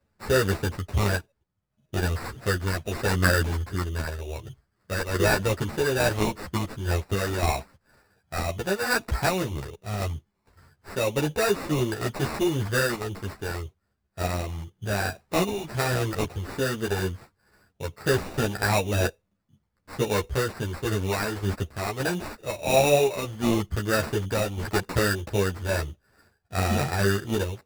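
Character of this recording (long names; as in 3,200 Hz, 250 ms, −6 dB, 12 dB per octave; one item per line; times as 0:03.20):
aliases and images of a low sample rate 3,200 Hz, jitter 0%
sample-and-hold tremolo 3.5 Hz
a shimmering, thickened sound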